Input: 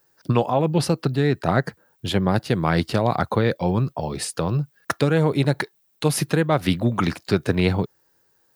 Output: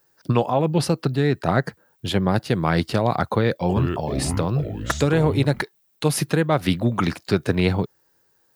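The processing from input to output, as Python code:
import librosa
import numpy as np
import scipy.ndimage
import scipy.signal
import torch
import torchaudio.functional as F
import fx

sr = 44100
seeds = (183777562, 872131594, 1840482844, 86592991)

y = fx.echo_pitch(x, sr, ms=365, semitones=-5, count=2, db_per_echo=-6.0, at=(3.28, 5.62))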